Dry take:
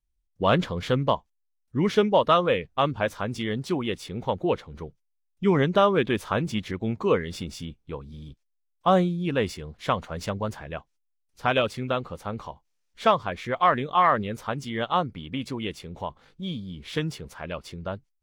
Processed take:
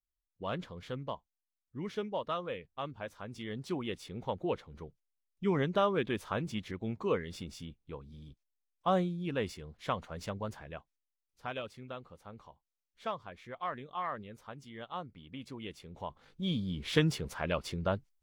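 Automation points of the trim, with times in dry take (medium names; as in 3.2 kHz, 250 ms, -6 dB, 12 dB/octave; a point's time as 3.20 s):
3.14 s -16 dB
3.73 s -9 dB
10.63 s -9 dB
11.61 s -17 dB
14.90 s -17 dB
15.94 s -10 dB
16.61 s +1 dB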